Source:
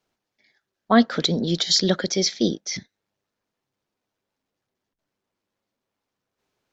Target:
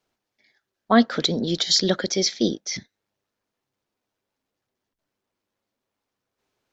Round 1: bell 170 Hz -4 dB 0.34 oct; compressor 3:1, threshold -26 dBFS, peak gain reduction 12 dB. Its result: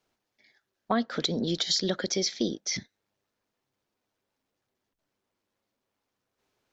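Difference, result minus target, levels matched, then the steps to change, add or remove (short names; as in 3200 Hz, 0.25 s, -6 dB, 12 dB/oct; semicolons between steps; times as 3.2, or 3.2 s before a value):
compressor: peak gain reduction +12 dB
remove: compressor 3:1, threshold -26 dBFS, peak gain reduction 12 dB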